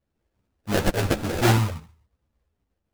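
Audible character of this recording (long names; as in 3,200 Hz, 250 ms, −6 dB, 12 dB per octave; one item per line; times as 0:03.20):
phaser sweep stages 6, 2.8 Hz, lowest notch 250–1,800 Hz
aliases and images of a low sample rate 1,100 Hz, jitter 20%
a shimmering, thickened sound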